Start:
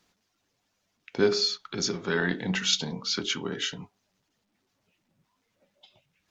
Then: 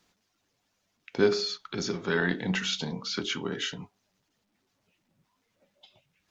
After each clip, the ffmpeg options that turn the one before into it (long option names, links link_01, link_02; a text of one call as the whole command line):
ffmpeg -i in.wav -filter_complex "[0:a]acrossover=split=2900[link_01][link_02];[link_02]acompressor=threshold=-32dB:ratio=4:attack=1:release=60[link_03];[link_01][link_03]amix=inputs=2:normalize=0" out.wav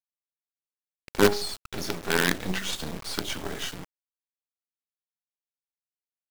ffmpeg -i in.wav -af "acrusher=bits=4:dc=4:mix=0:aa=0.000001,volume=3dB" out.wav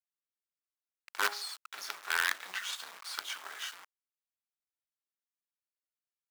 ffmpeg -i in.wav -af "highpass=frequency=1200:width_type=q:width=1.6,volume=-7dB" out.wav